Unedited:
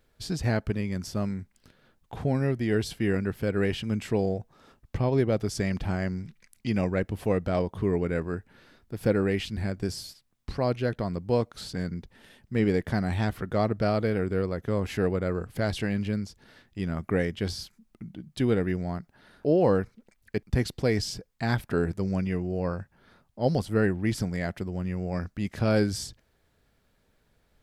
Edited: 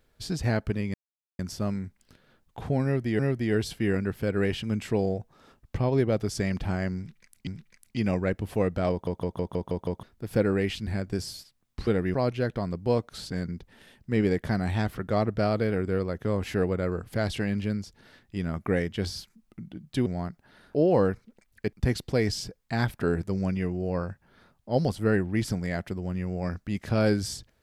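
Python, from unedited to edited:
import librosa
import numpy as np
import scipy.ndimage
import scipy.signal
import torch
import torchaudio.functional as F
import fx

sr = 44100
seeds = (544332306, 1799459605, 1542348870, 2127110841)

y = fx.edit(x, sr, fx.insert_silence(at_s=0.94, length_s=0.45),
    fx.repeat(start_s=2.39, length_s=0.35, count=2),
    fx.repeat(start_s=6.17, length_s=0.5, count=2),
    fx.stutter_over(start_s=7.61, slice_s=0.16, count=7),
    fx.move(start_s=18.49, length_s=0.27, to_s=10.57), tone=tone)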